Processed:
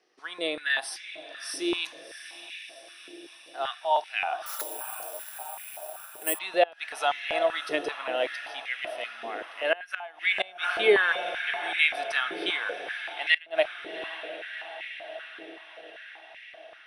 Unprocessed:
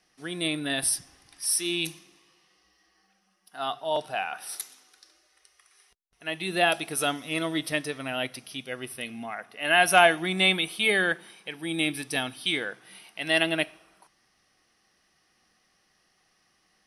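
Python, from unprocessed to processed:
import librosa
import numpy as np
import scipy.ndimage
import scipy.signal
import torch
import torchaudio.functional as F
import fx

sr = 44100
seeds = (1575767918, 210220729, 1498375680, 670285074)

y = scipy.signal.sosfilt(scipy.signal.butter(2, 5400.0, 'lowpass', fs=sr, output='sos'), x)
y = fx.echo_diffused(y, sr, ms=714, feedback_pct=65, wet_db=-11.5)
y = fx.gate_flip(y, sr, shuts_db=-10.0, range_db=-25)
y = fx.resample_bad(y, sr, factor=4, down='none', up='zero_stuff', at=(4.46, 6.39))
y = fx.filter_held_highpass(y, sr, hz=5.2, low_hz=400.0, high_hz=2100.0)
y = F.gain(torch.from_numpy(y), -2.5).numpy()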